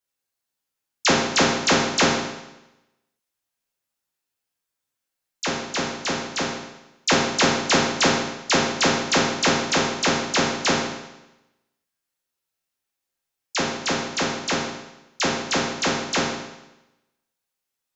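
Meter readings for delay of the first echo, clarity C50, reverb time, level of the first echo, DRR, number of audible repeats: no echo, 1.5 dB, 0.95 s, no echo, -5.5 dB, no echo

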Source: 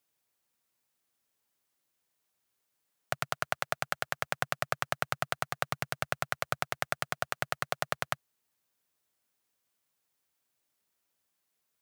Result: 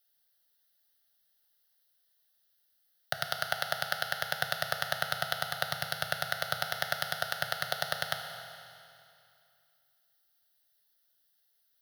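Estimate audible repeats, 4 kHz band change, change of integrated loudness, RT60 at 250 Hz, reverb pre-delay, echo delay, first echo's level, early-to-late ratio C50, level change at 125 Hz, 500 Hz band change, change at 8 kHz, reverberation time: no echo, +6.5 dB, +1.5 dB, 2.5 s, 8 ms, no echo, no echo, 5.5 dB, -2.5 dB, -0.5 dB, +0.5 dB, 2.5 s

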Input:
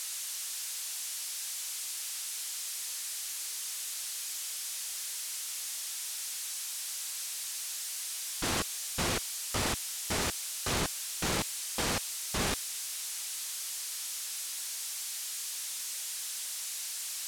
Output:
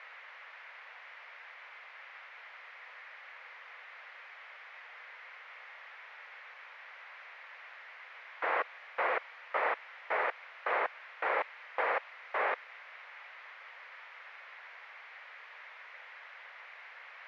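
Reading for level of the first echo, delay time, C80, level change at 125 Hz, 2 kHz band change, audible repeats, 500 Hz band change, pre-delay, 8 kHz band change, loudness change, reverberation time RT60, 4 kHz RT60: no echo, no echo, no reverb, under -40 dB, +3.5 dB, no echo, +2.5 dB, no reverb, under -40 dB, -6.0 dB, no reverb, no reverb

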